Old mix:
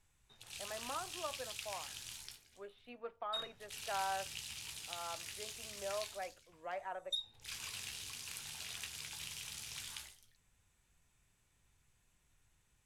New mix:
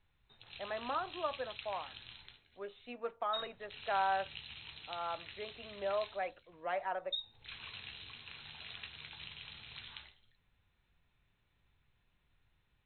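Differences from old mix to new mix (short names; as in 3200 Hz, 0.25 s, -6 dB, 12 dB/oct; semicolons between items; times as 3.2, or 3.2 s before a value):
speech +6.0 dB; master: add brick-wall FIR low-pass 4200 Hz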